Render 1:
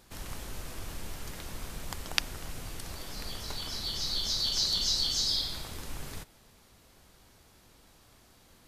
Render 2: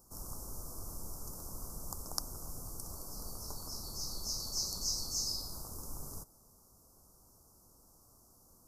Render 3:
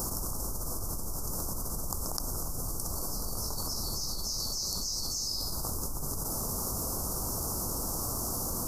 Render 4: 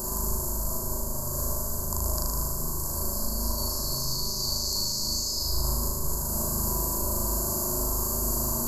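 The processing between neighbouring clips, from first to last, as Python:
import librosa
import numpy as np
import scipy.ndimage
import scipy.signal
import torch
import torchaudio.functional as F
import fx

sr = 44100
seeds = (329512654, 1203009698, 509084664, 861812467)

y1 = scipy.signal.sosfilt(scipy.signal.ellip(3, 1.0, 50, [1200.0, 5400.0], 'bandstop', fs=sr, output='sos'), x)
y1 = fx.high_shelf(y1, sr, hz=7600.0, db=10.5)
y1 = F.gain(torch.from_numpy(y1), -5.0).numpy()
y2 = fx.env_flatten(y1, sr, amount_pct=100)
y2 = F.gain(torch.from_numpy(y2), -1.0).numpy()
y3 = fx.ripple_eq(y2, sr, per_octave=1.4, db=13)
y3 = fx.room_flutter(y3, sr, wall_m=6.6, rt60_s=1.5)
y3 = F.gain(torch.from_numpy(y3), -2.0).numpy()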